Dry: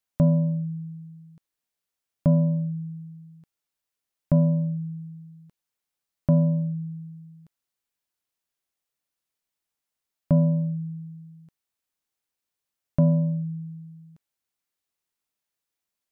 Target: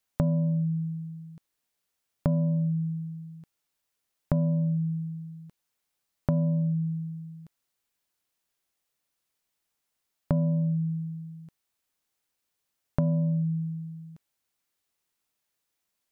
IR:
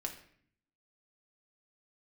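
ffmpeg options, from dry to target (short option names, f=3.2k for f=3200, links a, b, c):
-af "acompressor=threshold=-28dB:ratio=6,volume=4.5dB"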